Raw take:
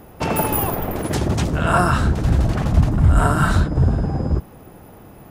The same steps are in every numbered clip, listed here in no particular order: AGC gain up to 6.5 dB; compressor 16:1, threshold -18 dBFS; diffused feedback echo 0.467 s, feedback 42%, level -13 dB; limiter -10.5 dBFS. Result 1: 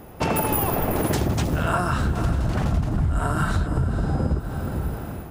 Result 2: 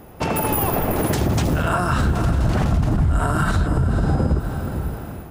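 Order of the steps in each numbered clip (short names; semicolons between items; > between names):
diffused feedback echo > AGC > compressor > limiter; diffused feedback echo > compressor > AGC > limiter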